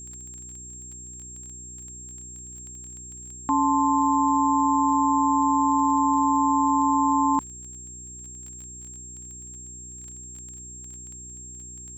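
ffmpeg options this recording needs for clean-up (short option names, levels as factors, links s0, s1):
-af "adeclick=t=4,bandreject=f=61.6:t=h:w=4,bandreject=f=123.2:t=h:w=4,bandreject=f=184.8:t=h:w=4,bandreject=f=246.4:t=h:w=4,bandreject=f=308:t=h:w=4,bandreject=f=369.6:t=h:w=4,bandreject=f=7500:w=30"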